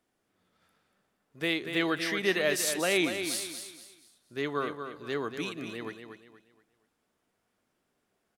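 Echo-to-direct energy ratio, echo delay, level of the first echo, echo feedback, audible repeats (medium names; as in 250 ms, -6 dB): -7.5 dB, 237 ms, -8.0 dB, 33%, 3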